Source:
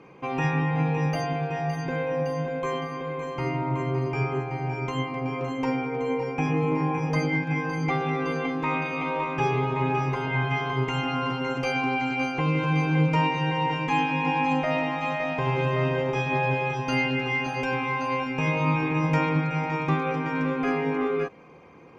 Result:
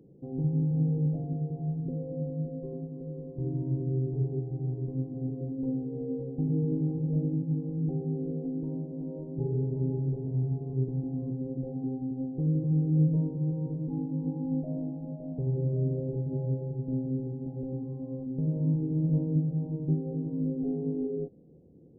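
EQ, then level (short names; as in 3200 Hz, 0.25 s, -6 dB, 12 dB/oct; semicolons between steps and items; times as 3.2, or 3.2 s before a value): Gaussian blur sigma 22 samples; 0.0 dB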